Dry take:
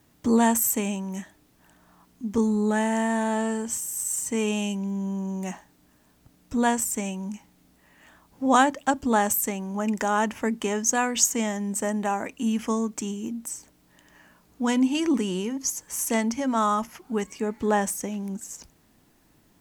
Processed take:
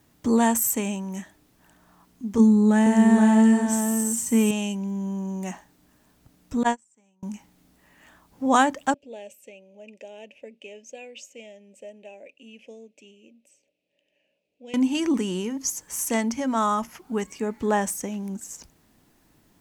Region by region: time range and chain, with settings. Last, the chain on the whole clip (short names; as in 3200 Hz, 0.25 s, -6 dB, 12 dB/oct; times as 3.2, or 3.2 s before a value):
2.39–4.51 bell 230 Hz +9.5 dB 0.39 oct + echo 0.472 s -5 dB
6.63–7.23 elliptic band-pass 120–7900 Hz + gate -23 dBFS, range -33 dB + bell 870 Hz +5.5 dB 0.23 oct
8.94–14.74 double band-pass 1200 Hz, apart 2.2 oct + bell 1200 Hz -11 dB 1.7 oct
whole clip: dry